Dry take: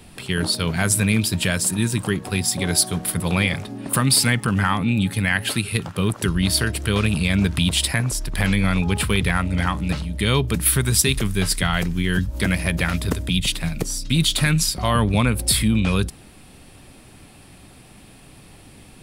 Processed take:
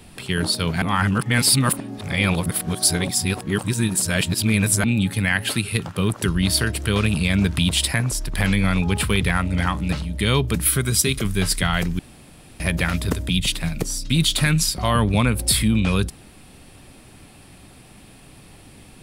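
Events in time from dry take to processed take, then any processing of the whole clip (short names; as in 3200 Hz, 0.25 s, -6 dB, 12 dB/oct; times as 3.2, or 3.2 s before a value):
0.82–4.84 reverse
10.66–11.25 notch comb 900 Hz
11.99–12.6 room tone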